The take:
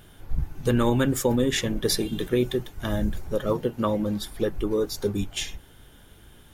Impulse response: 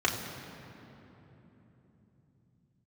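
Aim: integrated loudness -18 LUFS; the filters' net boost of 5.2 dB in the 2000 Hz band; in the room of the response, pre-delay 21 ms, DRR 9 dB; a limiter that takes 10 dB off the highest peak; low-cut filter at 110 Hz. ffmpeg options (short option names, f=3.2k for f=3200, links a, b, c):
-filter_complex "[0:a]highpass=110,equalizer=f=2k:t=o:g=6.5,alimiter=limit=-17.5dB:level=0:latency=1,asplit=2[a][b];[1:a]atrim=start_sample=2205,adelay=21[c];[b][c]afir=irnorm=-1:irlink=0,volume=-20.5dB[d];[a][d]amix=inputs=2:normalize=0,volume=10dB"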